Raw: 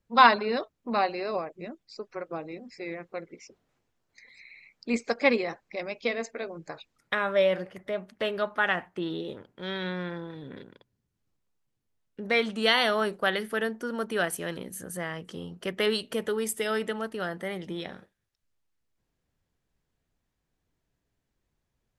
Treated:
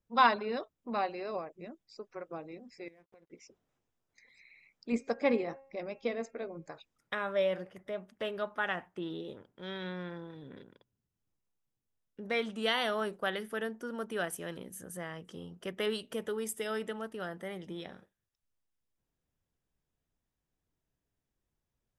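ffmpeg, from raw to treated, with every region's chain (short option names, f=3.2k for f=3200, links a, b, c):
-filter_complex "[0:a]asettb=1/sr,asplit=3[a][b][c];[a]atrim=end=2.884[d];[b]atrim=start=2.88:end=3.3,asetpts=PTS-STARTPTS,afade=t=in:d=0.004:c=qsin,afade=t=out:st=0.416:d=0.004:c=qsin,aeval=exprs='sgn(val(0))*max(abs(val(0))-0.00158,0)':c=same,bandreject=f=1.3k:w=5.7,acompressor=threshold=-50dB:ratio=8:attack=3.2:release=140:knee=1:detection=peak[e];[c]atrim=start=3.296[f];[d][e]acrossfade=d=0.004:c1=hsin:c2=qsin[g];[g][f]acrossfade=d=0.004:c1=qsin:c2=hsin,asettb=1/sr,asplit=3[h][i][j];[h]atrim=end=4.924[k];[i]atrim=start=4.92:end=6.66,asetpts=PTS-STARTPTS,afade=t=in:d=0.004:c=qsin,afade=t=out:st=1.736:d=0.004:c=qsin,tiltshelf=f=1.1k:g=4,bandreject=f=270.4:t=h:w=4,bandreject=f=540.8:t=h:w=4,bandreject=f=811.2:t=h:w=4,bandreject=f=1.0816k:t=h:w=4,bandreject=f=1.352k:t=h:w=4,bandreject=f=1.6224k:t=h:w=4,bandreject=f=1.8928k:t=h:w=4,bandreject=f=2.1632k:t=h:w=4,bandreject=f=2.4336k:t=h:w=4,bandreject=f=2.704k:t=h:w=4[l];[j]atrim=start=6.656[m];[k][l]acrossfade=d=0.004:c1=hsin:c2=qsin[n];[n][m]acrossfade=d=0.004:c1=qsin:c2=hsin,equalizer=f=2.1k:w=1.5:g=-2.5,bandreject=f=4.3k:w=7.3,volume=-6.5dB"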